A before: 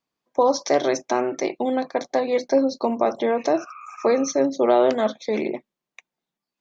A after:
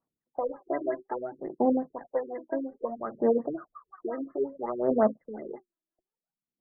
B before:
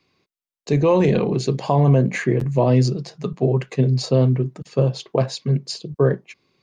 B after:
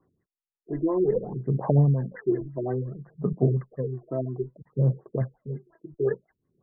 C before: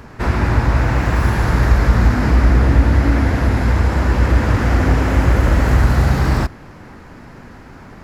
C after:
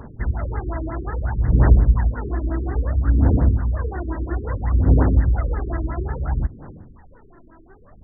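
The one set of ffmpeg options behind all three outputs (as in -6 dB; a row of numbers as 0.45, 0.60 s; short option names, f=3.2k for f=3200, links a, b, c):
-af "aphaser=in_gain=1:out_gain=1:delay=3.1:decay=0.77:speed=0.6:type=sinusoidal,afftfilt=real='re*lt(b*sr/1024,450*pow(2100/450,0.5+0.5*sin(2*PI*5.6*pts/sr)))':imag='im*lt(b*sr/1024,450*pow(2100/450,0.5+0.5*sin(2*PI*5.6*pts/sr)))':win_size=1024:overlap=0.75,volume=-12dB"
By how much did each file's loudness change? -8.5, -7.5, -5.5 LU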